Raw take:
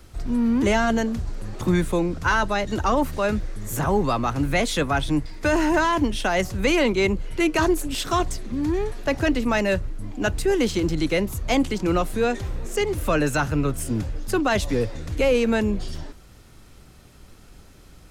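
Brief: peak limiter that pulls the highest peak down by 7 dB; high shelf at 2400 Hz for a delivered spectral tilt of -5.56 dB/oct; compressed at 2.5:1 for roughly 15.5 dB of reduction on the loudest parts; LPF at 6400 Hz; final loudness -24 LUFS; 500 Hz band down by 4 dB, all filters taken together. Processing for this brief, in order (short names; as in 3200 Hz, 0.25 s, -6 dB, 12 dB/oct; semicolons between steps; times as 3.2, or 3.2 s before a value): LPF 6400 Hz; bell 500 Hz -5 dB; high shelf 2400 Hz -7 dB; compressor 2.5:1, threshold -43 dBFS; gain +18 dB; limiter -14 dBFS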